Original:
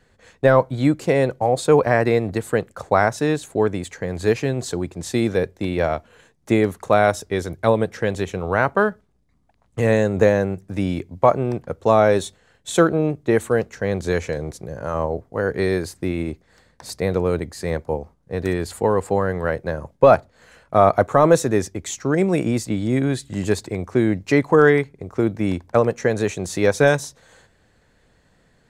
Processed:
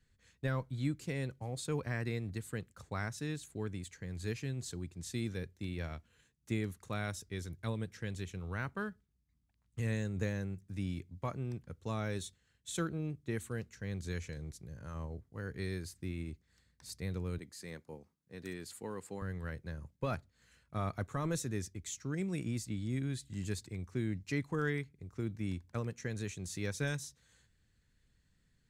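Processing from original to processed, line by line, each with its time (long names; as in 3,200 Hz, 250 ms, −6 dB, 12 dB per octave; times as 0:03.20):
0:17.38–0:19.22: high-pass filter 210 Hz
whole clip: guitar amp tone stack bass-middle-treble 6-0-2; level +2 dB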